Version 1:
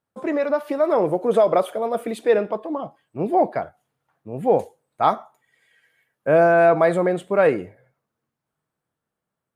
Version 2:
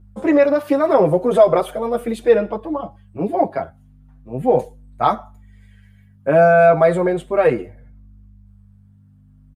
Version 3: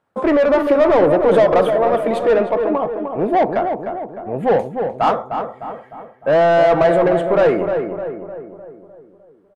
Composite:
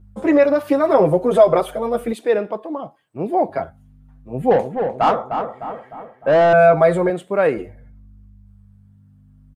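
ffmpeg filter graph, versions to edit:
-filter_complex "[0:a]asplit=2[a][b];[1:a]asplit=4[c][d][e][f];[c]atrim=end=2.132[g];[a]atrim=start=2.128:end=3.492[h];[d]atrim=start=3.488:end=4.512[i];[2:a]atrim=start=4.508:end=6.532[j];[e]atrim=start=6.528:end=7.102[k];[b]atrim=start=7.098:end=7.572[l];[f]atrim=start=7.568[m];[g][h]acrossfade=d=0.004:c1=hsin:c2=hsin[n];[n][i]acrossfade=d=0.004:c1=hsin:c2=hsin[o];[o][j]acrossfade=d=0.004:c1=hsin:c2=hsin[p];[p][k]acrossfade=d=0.004:c1=hsin:c2=hsin[q];[q][l]acrossfade=d=0.004:c1=hsin:c2=hsin[r];[r][m]acrossfade=d=0.004:c1=hsin:c2=hsin"

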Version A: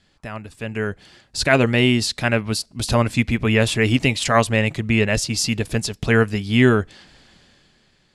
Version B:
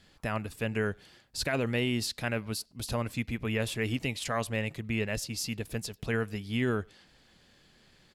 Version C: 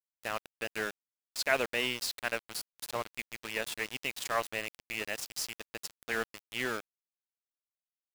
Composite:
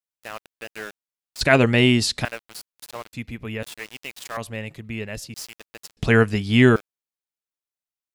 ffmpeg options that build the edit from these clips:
-filter_complex "[0:a]asplit=2[a][b];[1:a]asplit=2[c][d];[2:a]asplit=5[e][f][g][h][i];[e]atrim=end=1.412[j];[a]atrim=start=1.408:end=2.252[k];[f]atrim=start=2.248:end=3.132[l];[c]atrim=start=3.128:end=3.632[m];[g]atrim=start=3.628:end=4.372[n];[d]atrim=start=4.368:end=5.342[o];[h]atrim=start=5.338:end=5.972[p];[b]atrim=start=5.968:end=6.762[q];[i]atrim=start=6.758[r];[j][k]acrossfade=d=0.004:c1=hsin:c2=hsin[s];[s][l]acrossfade=d=0.004:c1=hsin:c2=hsin[t];[t][m]acrossfade=d=0.004:c1=hsin:c2=hsin[u];[u][n]acrossfade=d=0.004:c1=hsin:c2=hsin[v];[v][o]acrossfade=d=0.004:c1=hsin:c2=hsin[w];[w][p]acrossfade=d=0.004:c1=hsin:c2=hsin[x];[x][q]acrossfade=d=0.004:c1=hsin:c2=hsin[y];[y][r]acrossfade=d=0.004:c1=hsin:c2=hsin"

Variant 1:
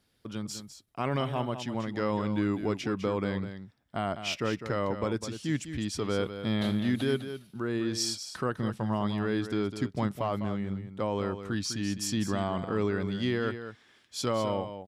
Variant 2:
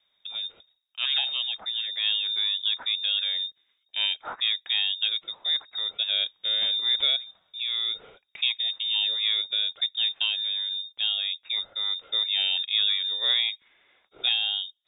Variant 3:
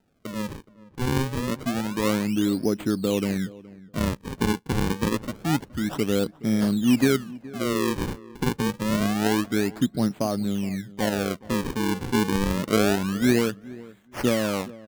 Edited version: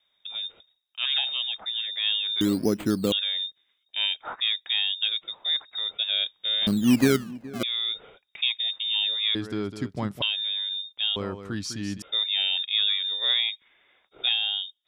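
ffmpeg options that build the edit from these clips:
-filter_complex "[2:a]asplit=2[a][b];[0:a]asplit=2[c][d];[1:a]asplit=5[e][f][g][h][i];[e]atrim=end=2.412[j];[a]atrim=start=2.408:end=3.122[k];[f]atrim=start=3.118:end=6.672[l];[b]atrim=start=6.668:end=7.632[m];[g]atrim=start=7.628:end=9.352[n];[c]atrim=start=9.348:end=10.222[o];[h]atrim=start=10.218:end=11.162[p];[d]atrim=start=11.158:end=12.022[q];[i]atrim=start=12.018[r];[j][k]acrossfade=d=0.004:c1=hsin:c2=hsin[s];[s][l]acrossfade=d=0.004:c1=hsin:c2=hsin[t];[t][m]acrossfade=d=0.004:c1=hsin:c2=hsin[u];[u][n]acrossfade=d=0.004:c1=hsin:c2=hsin[v];[v][o]acrossfade=d=0.004:c1=hsin:c2=hsin[w];[w][p]acrossfade=d=0.004:c1=hsin:c2=hsin[x];[x][q]acrossfade=d=0.004:c1=hsin:c2=hsin[y];[y][r]acrossfade=d=0.004:c1=hsin:c2=hsin"

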